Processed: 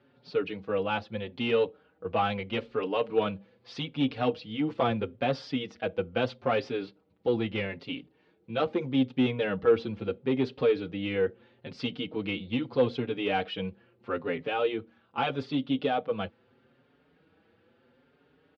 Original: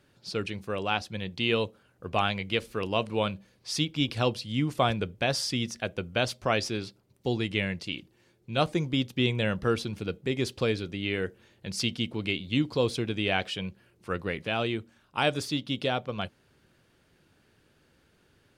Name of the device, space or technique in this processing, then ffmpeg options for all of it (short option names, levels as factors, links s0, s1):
barber-pole flanger into a guitar amplifier: -filter_complex "[0:a]asplit=2[s0][s1];[s1]adelay=5.3,afreqshift=0.78[s2];[s0][s2]amix=inputs=2:normalize=1,asoftclip=type=tanh:threshold=0.075,highpass=89,equalizer=f=260:t=q:w=4:g=8,equalizer=f=480:t=q:w=4:g=10,equalizer=f=800:t=q:w=4:g=6,equalizer=f=1300:t=q:w=4:g=4,lowpass=f=3700:w=0.5412,lowpass=f=3700:w=1.3066"